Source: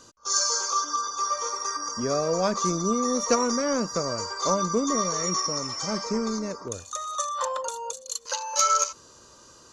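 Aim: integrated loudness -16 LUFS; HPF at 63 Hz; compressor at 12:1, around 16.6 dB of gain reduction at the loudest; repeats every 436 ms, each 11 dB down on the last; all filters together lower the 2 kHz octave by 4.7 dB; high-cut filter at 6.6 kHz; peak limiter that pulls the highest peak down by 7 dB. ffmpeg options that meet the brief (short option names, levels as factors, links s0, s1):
-af "highpass=63,lowpass=6600,equalizer=f=2000:t=o:g=-6.5,acompressor=threshold=0.02:ratio=12,alimiter=level_in=2:limit=0.0631:level=0:latency=1,volume=0.501,aecho=1:1:436|872|1308:0.282|0.0789|0.0221,volume=13.3"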